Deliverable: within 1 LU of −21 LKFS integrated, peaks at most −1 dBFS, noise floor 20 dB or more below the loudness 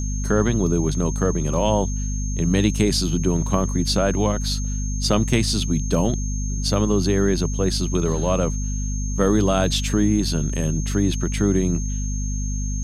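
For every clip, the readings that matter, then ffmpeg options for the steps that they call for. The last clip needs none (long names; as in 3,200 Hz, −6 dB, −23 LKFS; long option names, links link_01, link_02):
mains hum 50 Hz; hum harmonics up to 250 Hz; level of the hum −22 dBFS; interfering tone 6,400 Hz; level of the tone −33 dBFS; integrated loudness −21.5 LKFS; sample peak −4.5 dBFS; target loudness −21.0 LKFS
→ -af "bandreject=frequency=50:width_type=h:width=6,bandreject=frequency=100:width_type=h:width=6,bandreject=frequency=150:width_type=h:width=6,bandreject=frequency=200:width_type=h:width=6,bandreject=frequency=250:width_type=h:width=6"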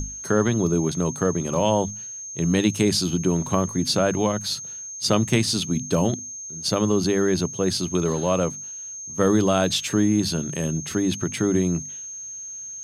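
mains hum none found; interfering tone 6,400 Hz; level of the tone −33 dBFS
→ -af "bandreject=frequency=6400:width=30"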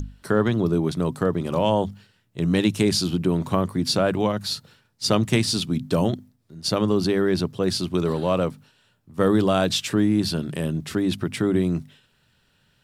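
interfering tone none found; integrated loudness −23.0 LKFS; sample peak −5.0 dBFS; target loudness −21.0 LKFS
→ -af "volume=2dB"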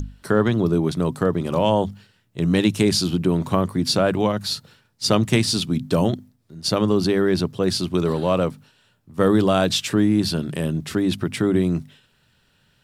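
integrated loudness −21.0 LKFS; sample peak −3.0 dBFS; background noise floor −63 dBFS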